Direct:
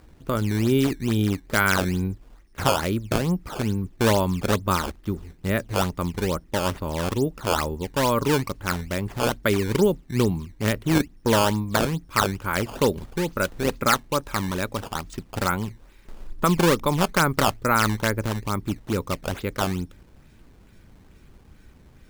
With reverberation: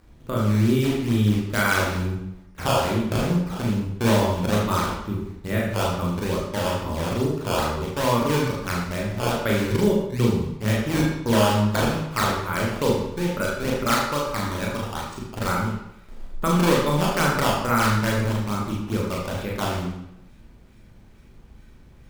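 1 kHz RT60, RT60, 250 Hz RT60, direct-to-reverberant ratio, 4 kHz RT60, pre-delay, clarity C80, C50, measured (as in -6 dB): 0.80 s, 0.80 s, 0.85 s, -3.5 dB, 0.70 s, 22 ms, 4.5 dB, 2.0 dB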